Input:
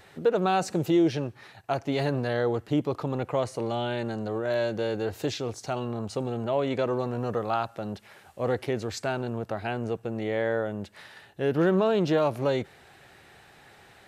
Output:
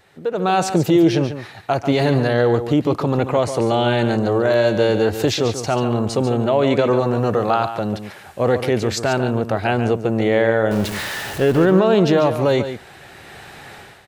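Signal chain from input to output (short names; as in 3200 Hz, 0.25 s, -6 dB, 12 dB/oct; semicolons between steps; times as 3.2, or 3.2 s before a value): 10.71–11.65 zero-crossing step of -36 dBFS; AGC gain up to 17 dB; limiter -5 dBFS, peak gain reduction 3.5 dB; echo 0.142 s -10 dB; gain -2 dB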